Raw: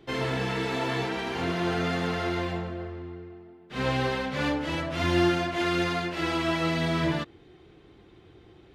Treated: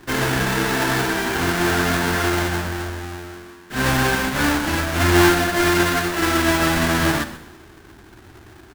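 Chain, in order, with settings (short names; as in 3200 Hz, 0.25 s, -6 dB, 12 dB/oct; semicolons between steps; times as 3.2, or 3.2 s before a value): half-waves squared off; thirty-one-band EQ 160 Hz -9 dB, 500 Hz -9 dB, 1600 Hz +8 dB; frequency-shifting echo 0.13 s, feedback 34%, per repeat -81 Hz, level -17 dB; Schroeder reverb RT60 0.96 s, combs from 25 ms, DRR 13 dB; gain +4.5 dB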